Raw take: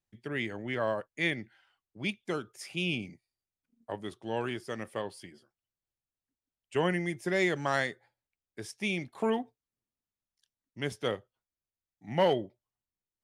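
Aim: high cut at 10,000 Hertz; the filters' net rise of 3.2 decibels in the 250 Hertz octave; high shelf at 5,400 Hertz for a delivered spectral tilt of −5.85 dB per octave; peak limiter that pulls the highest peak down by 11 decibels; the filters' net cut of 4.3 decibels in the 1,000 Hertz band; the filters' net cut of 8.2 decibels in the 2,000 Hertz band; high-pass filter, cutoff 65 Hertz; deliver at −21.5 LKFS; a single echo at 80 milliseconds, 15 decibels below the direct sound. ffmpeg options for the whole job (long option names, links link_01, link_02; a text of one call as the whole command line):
ffmpeg -i in.wav -af "highpass=65,lowpass=10000,equalizer=frequency=250:width_type=o:gain=5,equalizer=frequency=1000:width_type=o:gain=-4,equalizer=frequency=2000:width_type=o:gain=-8,highshelf=frequency=5400:gain=-5,alimiter=level_in=3dB:limit=-24dB:level=0:latency=1,volume=-3dB,aecho=1:1:80:0.178,volume=16.5dB" out.wav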